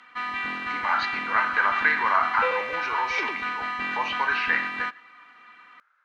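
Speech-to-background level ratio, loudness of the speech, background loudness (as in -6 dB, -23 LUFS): 2.5 dB, -26.0 LUFS, -28.5 LUFS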